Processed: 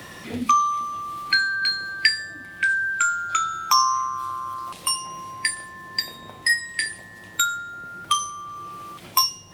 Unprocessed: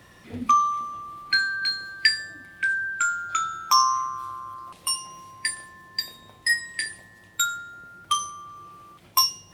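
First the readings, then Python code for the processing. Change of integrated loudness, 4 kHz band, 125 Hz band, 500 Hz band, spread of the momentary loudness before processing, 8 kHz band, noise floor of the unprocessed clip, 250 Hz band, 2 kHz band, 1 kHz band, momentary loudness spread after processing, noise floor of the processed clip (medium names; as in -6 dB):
+1.5 dB, +1.5 dB, +4.0 dB, no reading, 18 LU, +2.0 dB, -52 dBFS, +5.0 dB, +3.0 dB, +1.5 dB, 15 LU, -43 dBFS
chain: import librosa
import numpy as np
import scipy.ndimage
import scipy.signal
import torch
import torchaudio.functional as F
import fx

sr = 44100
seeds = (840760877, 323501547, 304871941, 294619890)

y = fx.band_squash(x, sr, depth_pct=40)
y = y * 10.0 ** (3.0 / 20.0)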